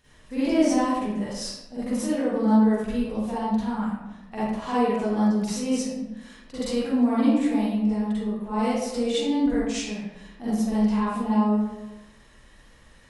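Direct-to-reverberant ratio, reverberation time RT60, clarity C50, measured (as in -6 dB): -11.5 dB, 1.0 s, -5.0 dB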